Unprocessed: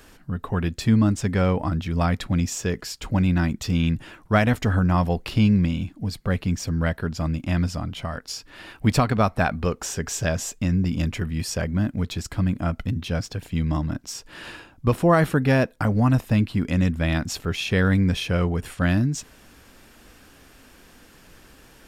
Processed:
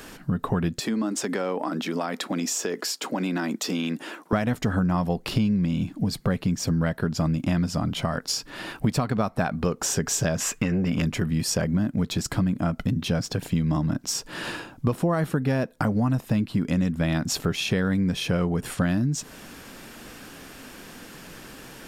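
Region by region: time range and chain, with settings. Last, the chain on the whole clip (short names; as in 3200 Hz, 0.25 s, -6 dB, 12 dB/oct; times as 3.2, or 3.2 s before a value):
0.79–4.33 HPF 270 Hz 24 dB/oct + compressor 4:1, threshold -31 dBFS
10.4–11.02 band shelf 1700 Hz +11 dB + core saturation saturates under 340 Hz
whole clip: resonant low shelf 110 Hz -7 dB, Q 1.5; compressor 6:1, threshold -29 dBFS; dynamic EQ 2400 Hz, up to -4 dB, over -53 dBFS, Q 1.1; gain +8 dB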